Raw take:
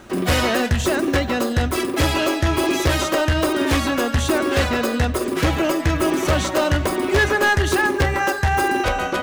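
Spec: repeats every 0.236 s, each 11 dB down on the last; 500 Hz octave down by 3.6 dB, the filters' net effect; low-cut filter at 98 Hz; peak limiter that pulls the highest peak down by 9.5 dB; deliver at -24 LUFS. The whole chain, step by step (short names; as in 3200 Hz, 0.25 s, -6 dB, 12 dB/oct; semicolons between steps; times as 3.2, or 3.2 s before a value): HPF 98 Hz; bell 500 Hz -5 dB; limiter -17 dBFS; feedback echo 0.236 s, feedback 28%, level -11 dB; gain +1 dB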